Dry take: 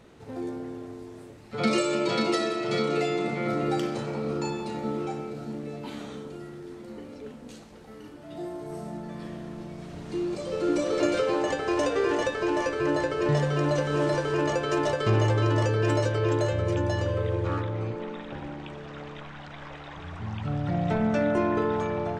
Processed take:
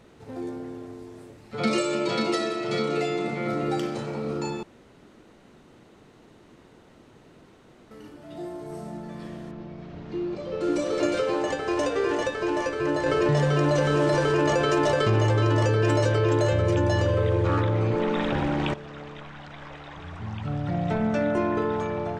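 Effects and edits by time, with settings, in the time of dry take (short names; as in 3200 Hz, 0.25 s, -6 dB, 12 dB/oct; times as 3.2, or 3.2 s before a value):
4.63–7.91 room tone
9.51–10.61 air absorption 180 m
13.06–18.74 fast leveller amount 70%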